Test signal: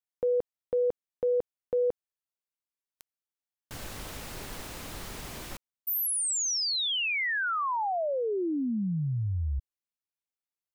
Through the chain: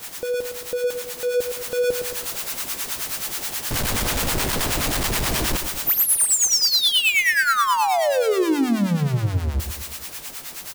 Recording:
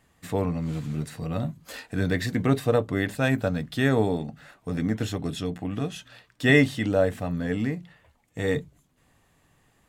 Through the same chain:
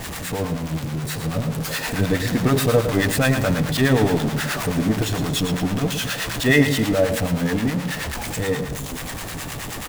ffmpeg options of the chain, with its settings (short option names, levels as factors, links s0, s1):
-filter_complex "[0:a]aeval=exprs='val(0)+0.5*0.0794*sgn(val(0))':c=same,dynaudnorm=f=170:g=21:m=2.11,acrossover=split=730[s0][s1];[s0]aeval=exprs='val(0)*(1-0.7/2+0.7/2*cos(2*PI*9.4*n/s))':c=same[s2];[s1]aeval=exprs='val(0)*(1-0.7/2-0.7/2*cos(2*PI*9.4*n/s))':c=same[s3];[s2][s3]amix=inputs=2:normalize=0,asplit=2[s4][s5];[s5]aecho=0:1:112|224|336|448|560:0.355|0.17|0.0817|0.0392|0.0188[s6];[s4][s6]amix=inputs=2:normalize=0"